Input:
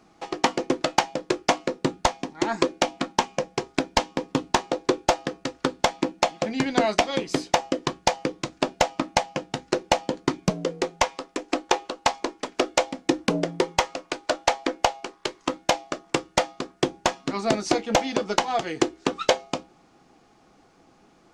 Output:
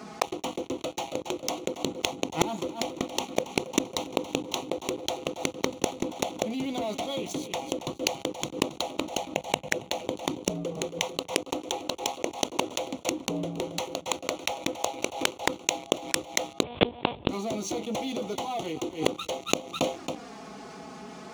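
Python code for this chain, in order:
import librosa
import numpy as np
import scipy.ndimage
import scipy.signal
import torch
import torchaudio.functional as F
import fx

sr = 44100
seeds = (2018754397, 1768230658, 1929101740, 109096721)

p1 = fx.fixed_phaser(x, sr, hz=1300.0, stages=6, at=(9.25, 9.76))
p2 = fx.leveller(p1, sr, passes=5)
p3 = fx.env_flanger(p2, sr, rest_ms=4.7, full_db=-18.0)
p4 = p3 + fx.echo_feedback(p3, sr, ms=274, feedback_pct=21, wet_db=-19, dry=0)
p5 = fx.lpc_monotone(p4, sr, seeds[0], pitch_hz=240.0, order=10, at=(16.63, 17.29))
p6 = scipy.signal.sosfilt(scipy.signal.butter(4, 71.0, 'highpass', fs=sr, output='sos'), p5)
p7 = fx.gate_flip(p6, sr, shuts_db=-13.0, range_db=-35)
p8 = fx.env_flatten(p7, sr, amount_pct=50)
y = p8 * librosa.db_to_amplitude(2.0)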